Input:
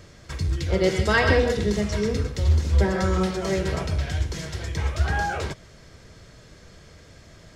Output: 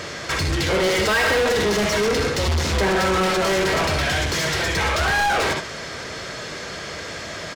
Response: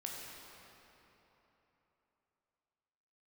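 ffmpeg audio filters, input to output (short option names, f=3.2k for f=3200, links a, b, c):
-filter_complex "[0:a]aecho=1:1:61|74:0.266|0.224,asplit=2[a][b];[b]highpass=f=720:p=1,volume=36dB,asoftclip=type=tanh:threshold=-6dB[c];[a][c]amix=inputs=2:normalize=0,lowpass=f=4.2k:p=1,volume=-6dB,volume=-6.5dB"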